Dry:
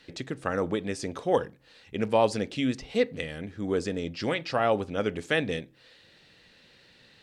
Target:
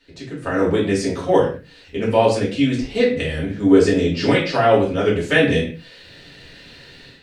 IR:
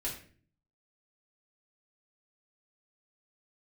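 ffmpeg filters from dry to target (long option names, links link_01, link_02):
-filter_complex "[0:a]dynaudnorm=framelen=320:gausssize=3:maxgain=15dB[link_01];[1:a]atrim=start_sample=2205,afade=type=out:start_time=0.26:duration=0.01,atrim=end_sample=11907[link_02];[link_01][link_02]afir=irnorm=-1:irlink=0,volume=-2.5dB"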